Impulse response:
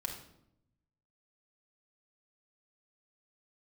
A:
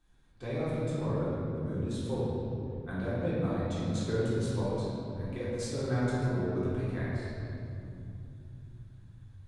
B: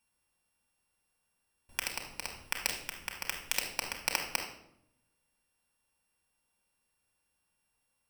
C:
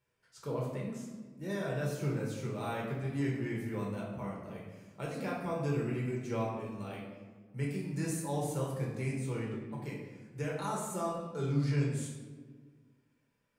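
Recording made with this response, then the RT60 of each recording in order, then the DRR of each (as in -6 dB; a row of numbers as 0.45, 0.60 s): B; 2.8, 0.75, 1.6 s; -10.5, 2.0, -4.0 dB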